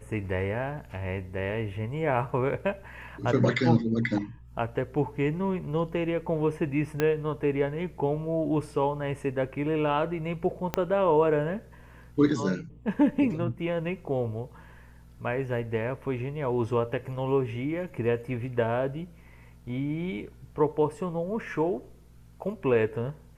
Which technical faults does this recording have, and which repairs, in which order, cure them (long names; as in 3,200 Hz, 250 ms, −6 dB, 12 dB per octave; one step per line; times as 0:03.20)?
0:07.00: click −12 dBFS
0:10.74: click −11 dBFS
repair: click removal